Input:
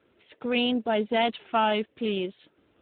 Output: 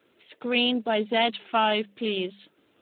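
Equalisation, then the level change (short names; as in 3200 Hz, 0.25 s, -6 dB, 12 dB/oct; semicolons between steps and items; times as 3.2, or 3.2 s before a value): HPF 120 Hz 12 dB/oct; high shelf 3600 Hz +11 dB; notches 50/100/150/200 Hz; 0.0 dB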